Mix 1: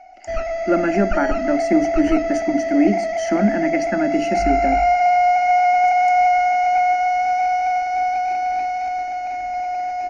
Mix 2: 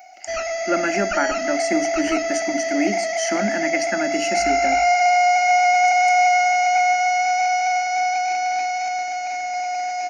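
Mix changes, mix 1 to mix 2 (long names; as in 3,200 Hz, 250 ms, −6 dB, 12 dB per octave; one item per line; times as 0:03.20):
background: remove high-frequency loss of the air 83 metres
master: add spectral tilt +3.5 dB per octave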